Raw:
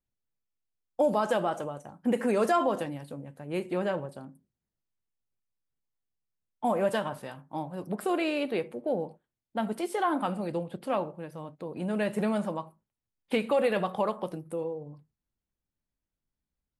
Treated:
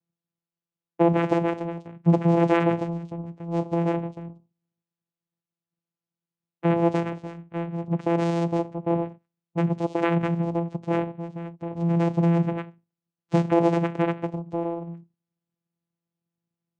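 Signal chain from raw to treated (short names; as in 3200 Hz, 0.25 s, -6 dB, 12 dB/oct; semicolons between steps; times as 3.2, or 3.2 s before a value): vocoder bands 4, saw 169 Hz; gain +6.5 dB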